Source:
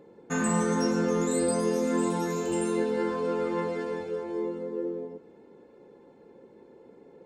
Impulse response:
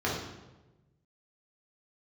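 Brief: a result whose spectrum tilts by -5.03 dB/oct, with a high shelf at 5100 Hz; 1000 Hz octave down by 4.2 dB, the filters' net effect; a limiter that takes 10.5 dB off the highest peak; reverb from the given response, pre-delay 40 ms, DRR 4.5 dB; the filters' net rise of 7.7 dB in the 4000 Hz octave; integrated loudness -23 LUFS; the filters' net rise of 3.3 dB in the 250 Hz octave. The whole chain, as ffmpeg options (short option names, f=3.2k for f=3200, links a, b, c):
-filter_complex "[0:a]equalizer=f=250:t=o:g=4.5,equalizer=f=1k:t=o:g=-6,equalizer=f=4k:t=o:g=6.5,highshelf=f=5.1k:g=7.5,alimiter=limit=-21.5dB:level=0:latency=1,asplit=2[a][b];[1:a]atrim=start_sample=2205,adelay=40[c];[b][c]afir=irnorm=-1:irlink=0,volume=-15dB[d];[a][d]amix=inputs=2:normalize=0,volume=5.5dB"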